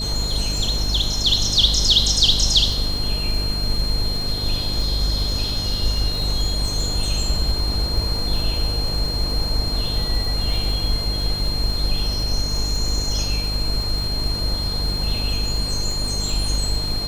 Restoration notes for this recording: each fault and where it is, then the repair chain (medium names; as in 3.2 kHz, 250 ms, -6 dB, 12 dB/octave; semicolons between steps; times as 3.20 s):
buzz 50 Hz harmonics 12 -26 dBFS
crackle 50 per s -26 dBFS
whine 4.2 kHz -25 dBFS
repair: de-click; band-stop 4.2 kHz, Q 30; de-hum 50 Hz, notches 12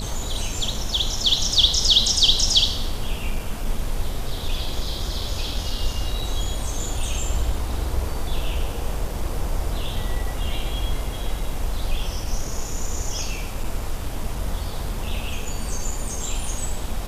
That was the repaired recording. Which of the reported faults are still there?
nothing left